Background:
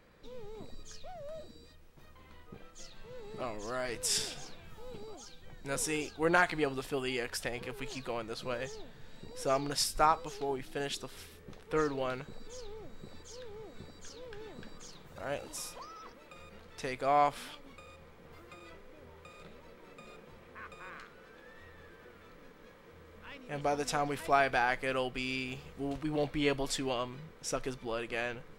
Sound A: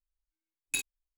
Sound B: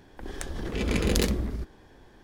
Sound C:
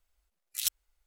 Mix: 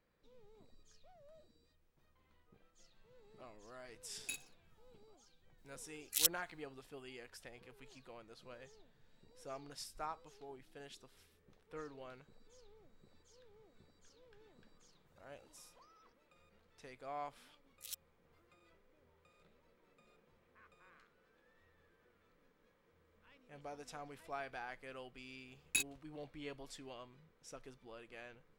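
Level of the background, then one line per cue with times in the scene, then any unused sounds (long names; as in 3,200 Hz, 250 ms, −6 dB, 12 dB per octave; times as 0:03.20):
background −17.5 dB
0:03.55: mix in A −12 dB + repeating echo 61 ms, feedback 40%, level −19 dB
0:05.58: mix in C −1 dB
0:17.26: mix in C −17 dB
0:25.01: mix in A −3 dB
not used: B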